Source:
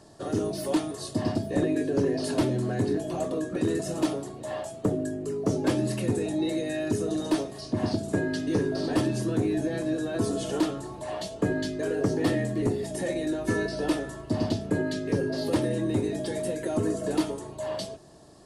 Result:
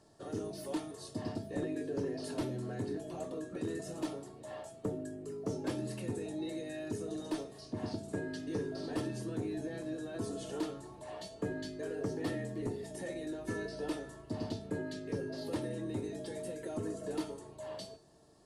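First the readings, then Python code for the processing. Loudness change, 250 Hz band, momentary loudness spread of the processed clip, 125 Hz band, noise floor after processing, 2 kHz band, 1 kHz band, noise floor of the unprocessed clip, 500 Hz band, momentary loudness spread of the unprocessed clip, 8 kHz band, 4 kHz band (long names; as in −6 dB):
−11.5 dB, −11.5 dB, 6 LU, −11.5 dB, −54 dBFS, −11.0 dB, −11.0 dB, −42 dBFS, −11.0 dB, 6 LU, −11.0 dB, −11.0 dB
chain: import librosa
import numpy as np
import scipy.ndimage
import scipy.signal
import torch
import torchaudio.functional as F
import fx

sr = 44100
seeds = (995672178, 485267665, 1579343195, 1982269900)

y = fx.comb_fb(x, sr, f0_hz=450.0, decay_s=0.44, harmonics='all', damping=0.0, mix_pct=70)
y = y * 10.0 ** (-1.5 / 20.0)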